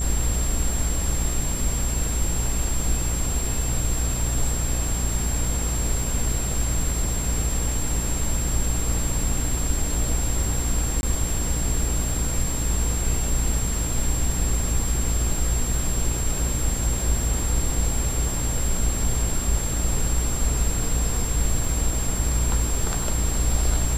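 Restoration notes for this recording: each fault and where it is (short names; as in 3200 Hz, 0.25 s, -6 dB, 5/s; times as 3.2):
buzz 60 Hz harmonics 37 -27 dBFS
crackle 25/s -29 dBFS
tone 7500 Hz -29 dBFS
11.01–11.03 gap 21 ms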